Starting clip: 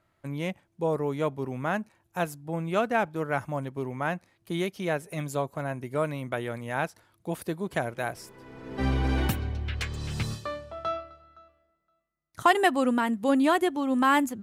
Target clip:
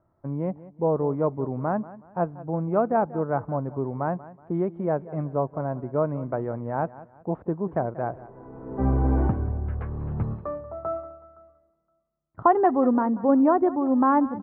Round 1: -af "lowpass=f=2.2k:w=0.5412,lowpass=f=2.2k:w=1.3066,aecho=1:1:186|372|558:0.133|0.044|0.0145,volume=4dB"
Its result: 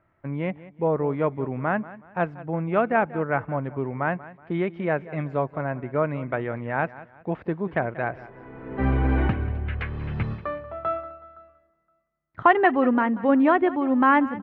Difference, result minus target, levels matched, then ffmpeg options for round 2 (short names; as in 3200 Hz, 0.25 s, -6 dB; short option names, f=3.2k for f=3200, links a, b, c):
2000 Hz band +12.5 dB
-af "lowpass=f=1.1k:w=0.5412,lowpass=f=1.1k:w=1.3066,aecho=1:1:186|372|558:0.133|0.044|0.0145,volume=4dB"